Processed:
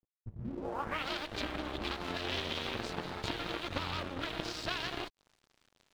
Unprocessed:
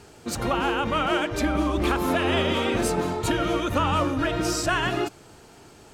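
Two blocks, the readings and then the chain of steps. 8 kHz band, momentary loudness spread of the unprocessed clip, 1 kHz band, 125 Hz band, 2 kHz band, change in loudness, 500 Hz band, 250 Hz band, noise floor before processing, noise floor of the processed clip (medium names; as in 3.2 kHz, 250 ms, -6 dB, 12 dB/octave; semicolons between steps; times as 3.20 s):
-18.0 dB, 4 LU, -14.5 dB, -14.5 dB, -11.5 dB, -13.0 dB, -15.5 dB, -16.5 dB, -50 dBFS, -82 dBFS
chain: peaking EQ 88 Hz +4 dB 0.3 oct; compression 4:1, threshold -31 dBFS, peak gain reduction 11 dB; Chebyshev shaper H 3 -10 dB, 5 -35 dB, 8 -23 dB, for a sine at -20 dBFS; low-pass sweep 110 Hz -> 4 kHz, 0.34–1.07 s; crossover distortion -56.5 dBFS; trim +2.5 dB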